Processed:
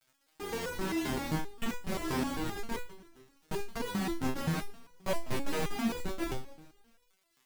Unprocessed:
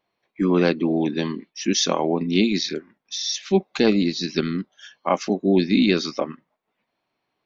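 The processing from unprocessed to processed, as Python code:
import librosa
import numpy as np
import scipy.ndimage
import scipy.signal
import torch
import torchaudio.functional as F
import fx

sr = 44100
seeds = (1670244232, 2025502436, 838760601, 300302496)

y = fx.env_lowpass_down(x, sr, base_hz=540.0, full_db=-19.0)
y = scipy.signal.sosfilt(scipy.signal.cheby1(8, 1.0, 3000.0, 'lowpass', fs=sr, output='sos'), y)
y = fx.over_compress(y, sr, threshold_db=-31.0, ratio=-1.0, at=(2.22, 2.7), fade=0.02)
y = fx.low_shelf(y, sr, hz=430.0, db=-5.0, at=(3.81, 4.23))
y = fx.schmitt(y, sr, flips_db=-32.0)
y = fx.dmg_crackle(y, sr, seeds[0], per_s=240.0, level_db=-47.0)
y = fx.overflow_wrap(y, sr, gain_db=24.0, at=(5.13, 5.78))
y = fx.echo_feedback(y, sr, ms=143, feedback_pct=56, wet_db=-19.0)
y = fx.resonator_held(y, sr, hz=7.6, low_hz=130.0, high_hz=490.0)
y = y * librosa.db_to_amplitude(6.5)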